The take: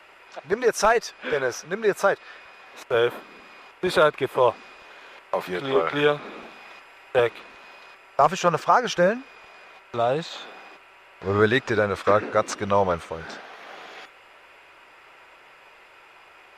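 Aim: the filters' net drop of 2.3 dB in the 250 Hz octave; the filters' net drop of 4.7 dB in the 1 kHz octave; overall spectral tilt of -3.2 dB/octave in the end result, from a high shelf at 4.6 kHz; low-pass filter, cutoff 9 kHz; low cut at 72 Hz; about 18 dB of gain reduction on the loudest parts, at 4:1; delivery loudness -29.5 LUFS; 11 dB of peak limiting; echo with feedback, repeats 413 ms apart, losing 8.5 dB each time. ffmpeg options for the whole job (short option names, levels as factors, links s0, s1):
-af "highpass=72,lowpass=9000,equalizer=f=250:t=o:g=-3,equalizer=f=1000:t=o:g=-6.5,highshelf=f=4600:g=4,acompressor=threshold=0.0112:ratio=4,alimiter=level_in=2.51:limit=0.0631:level=0:latency=1,volume=0.398,aecho=1:1:413|826|1239|1652:0.376|0.143|0.0543|0.0206,volume=5.01"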